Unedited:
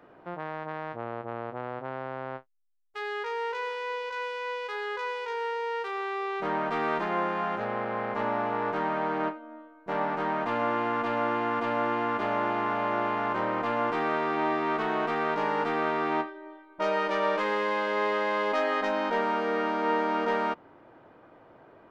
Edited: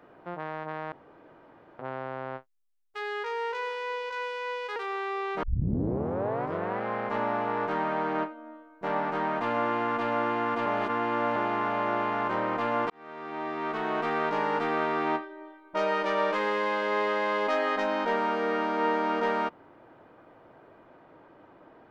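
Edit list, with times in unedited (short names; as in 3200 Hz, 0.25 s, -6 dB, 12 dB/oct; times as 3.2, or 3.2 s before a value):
0.92–1.79 room tone
4.76–5.81 cut
6.48 tape start 1.41 s
11.71–12.41 reverse
13.95–15.14 fade in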